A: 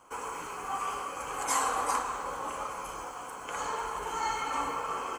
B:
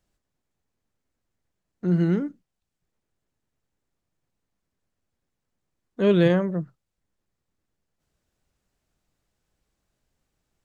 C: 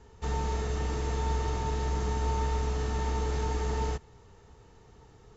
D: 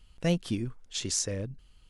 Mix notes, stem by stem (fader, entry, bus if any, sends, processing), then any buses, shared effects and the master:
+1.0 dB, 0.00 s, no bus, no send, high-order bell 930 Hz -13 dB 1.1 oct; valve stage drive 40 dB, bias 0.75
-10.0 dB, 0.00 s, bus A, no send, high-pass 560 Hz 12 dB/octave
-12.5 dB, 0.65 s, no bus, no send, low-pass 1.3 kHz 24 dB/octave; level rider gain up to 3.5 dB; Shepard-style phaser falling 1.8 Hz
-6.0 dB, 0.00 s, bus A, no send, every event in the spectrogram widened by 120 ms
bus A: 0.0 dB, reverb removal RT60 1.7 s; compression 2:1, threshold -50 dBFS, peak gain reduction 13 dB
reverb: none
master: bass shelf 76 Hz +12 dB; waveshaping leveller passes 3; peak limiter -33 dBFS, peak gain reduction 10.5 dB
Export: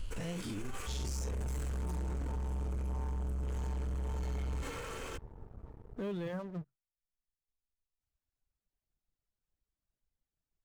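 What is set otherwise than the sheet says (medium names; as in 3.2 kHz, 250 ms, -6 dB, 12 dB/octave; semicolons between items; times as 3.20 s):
stem A +1.0 dB -> -7.5 dB; stem B: missing high-pass 560 Hz 12 dB/octave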